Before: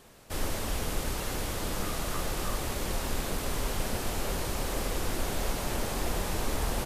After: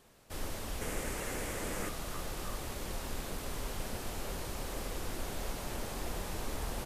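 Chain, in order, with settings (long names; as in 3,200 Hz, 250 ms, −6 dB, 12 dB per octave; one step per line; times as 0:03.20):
0:00.81–0:01.89: graphic EQ with 10 bands 250 Hz +3 dB, 500 Hz +5 dB, 2,000 Hz +8 dB, 4,000 Hz −4 dB, 8,000 Hz +6 dB
level −7.5 dB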